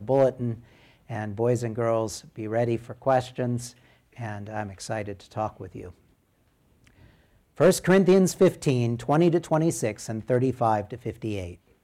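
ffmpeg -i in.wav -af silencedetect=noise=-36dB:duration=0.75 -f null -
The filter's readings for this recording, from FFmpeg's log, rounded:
silence_start: 5.89
silence_end: 7.60 | silence_duration: 1.70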